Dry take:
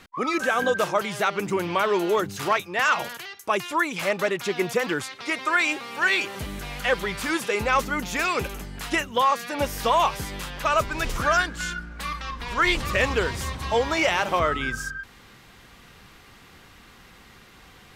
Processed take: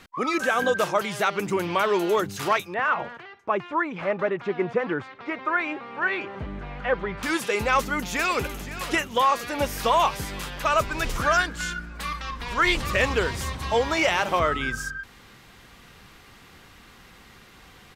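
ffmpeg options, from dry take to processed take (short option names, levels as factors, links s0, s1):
-filter_complex "[0:a]asettb=1/sr,asplit=3[s0][s1][s2];[s0]atrim=end=2.744[s3];[s1]atrim=start=2.74:end=7.23,asetpts=PTS-STARTPTS,afade=t=in:d=0.004:c=qsin,afade=t=out:st=4.486:d=0.004:c=qsin,lowpass=1600[s4];[s2]atrim=start=7.226[s5];[s3][s4]acrossfade=d=0.004:c1=hsin:c2=qsin[s6];[s6][s5]acrossfade=d=0.004:c1=qsin:c2=hsin,asplit=2[s7][s8];[s8]afade=t=in:st=7.77:d=0.01,afade=t=out:st=8.68:d=0.01,aecho=0:1:520|1040|1560|2080|2600|3120|3640|4160|4680:0.223872|0.15671|0.109697|0.0767881|0.0537517|0.0376262|0.0263383|0.0184368|0.0129058[s9];[s7][s9]amix=inputs=2:normalize=0"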